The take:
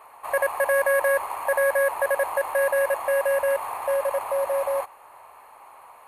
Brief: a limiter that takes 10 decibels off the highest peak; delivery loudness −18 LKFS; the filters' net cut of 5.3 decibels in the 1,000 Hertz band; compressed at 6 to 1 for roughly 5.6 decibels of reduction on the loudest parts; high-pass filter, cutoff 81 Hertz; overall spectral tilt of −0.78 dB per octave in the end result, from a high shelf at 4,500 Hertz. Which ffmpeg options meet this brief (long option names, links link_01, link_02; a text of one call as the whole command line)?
ffmpeg -i in.wav -af "highpass=81,equalizer=frequency=1000:width_type=o:gain=-6.5,highshelf=frequency=4500:gain=5,acompressor=threshold=-26dB:ratio=6,volume=16dB,alimiter=limit=-10dB:level=0:latency=1" out.wav